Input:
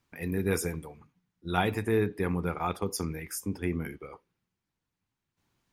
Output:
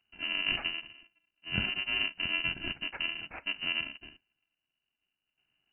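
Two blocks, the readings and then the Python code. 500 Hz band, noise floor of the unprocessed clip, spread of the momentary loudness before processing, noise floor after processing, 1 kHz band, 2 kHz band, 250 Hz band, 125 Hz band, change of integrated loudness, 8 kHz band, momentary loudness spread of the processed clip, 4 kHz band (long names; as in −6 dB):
−19.0 dB, below −85 dBFS, 15 LU, below −85 dBFS, −11.5 dB, +6.0 dB, −14.0 dB, −13.5 dB, −0.5 dB, below −40 dB, 10 LU, +13.0 dB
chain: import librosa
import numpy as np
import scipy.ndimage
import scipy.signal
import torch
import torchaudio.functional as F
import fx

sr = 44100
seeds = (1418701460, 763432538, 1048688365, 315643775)

y = fx.bit_reversed(x, sr, seeds[0], block=128)
y = fx.freq_invert(y, sr, carrier_hz=2900)
y = y * 10.0 ** (2.0 / 20.0)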